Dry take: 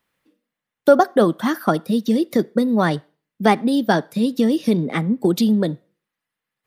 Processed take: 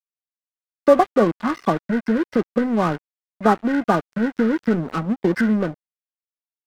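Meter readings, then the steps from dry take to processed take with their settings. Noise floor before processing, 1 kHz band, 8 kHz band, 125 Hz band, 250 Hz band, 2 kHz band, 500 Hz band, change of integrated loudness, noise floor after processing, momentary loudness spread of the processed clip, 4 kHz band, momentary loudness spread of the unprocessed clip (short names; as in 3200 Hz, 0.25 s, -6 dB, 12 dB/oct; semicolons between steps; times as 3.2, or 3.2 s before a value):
-85 dBFS, -0.5 dB, n/a, -2.5 dB, -2.0 dB, -1.0 dB, -1.0 dB, -1.5 dB, under -85 dBFS, 7 LU, -9.0 dB, 6 LU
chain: nonlinear frequency compression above 1100 Hz 4:1; crossover distortion -28 dBFS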